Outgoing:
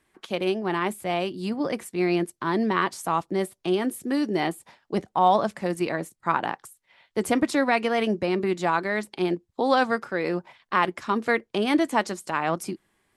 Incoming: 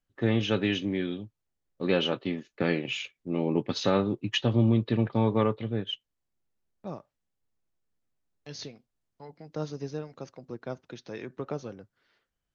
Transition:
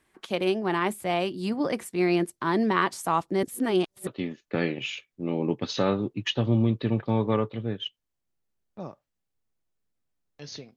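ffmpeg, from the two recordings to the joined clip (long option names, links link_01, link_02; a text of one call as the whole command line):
ffmpeg -i cue0.wav -i cue1.wav -filter_complex "[0:a]apad=whole_dur=10.76,atrim=end=10.76,asplit=2[link_01][link_02];[link_01]atrim=end=3.432[link_03];[link_02]atrim=start=3.428:end=4.072,asetpts=PTS-STARTPTS,areverse[link_04];[1:a]atrim=start=2.138:end=8.83[link_05];[link_03][link_04]acrossfade=duration=0.004:curve1=hsin:curve2=hsin[link_06];[link_06][link_05]acrossfade=duration=0.004:curve1=hsin:curve2=hsin" out.wav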